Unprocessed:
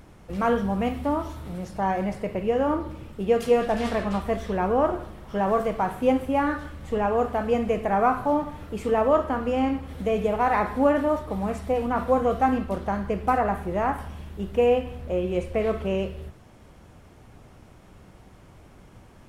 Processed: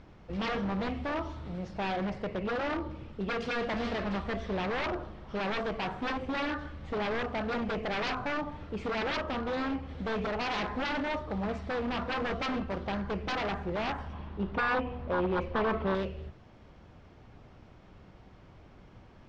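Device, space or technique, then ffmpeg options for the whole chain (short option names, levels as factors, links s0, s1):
synthesiser wavefolder: -filter_complex "[0:a]aeval=exprs='0.0708*(abs(mod(val(0)/0.0708+3,4)-2)-1)':c=same,lowpass=f=5200:w=0.5412,lowpass=f=5200:w=1.3066,asettb=1/sr,asplit=3[s0][s1][s2];[s0]atrim=end=14.134[s3];[s1]atrim=start=14.13:end=15.95,asetpts=PTS-STARTPTS,afade=t=in:d=0.004:c=qsin,afade=t=out:st=1.816:d=0.004:c=qsin,equalizer=f=250:t=o:w=1:g=4,equalizer=f=1000:t=o:w=1:g=9,equalizer=f=8000:t=o:w=1:g=-11[s4];[s2]atrim=start=15.946[s5];[s3][s4]acrossfade=d=0.004:c1=hsin:c2=qsin[s6];[s6][s5]acrossfade=d=0.004:c1=qsin:c2=hsin,volume=0.631"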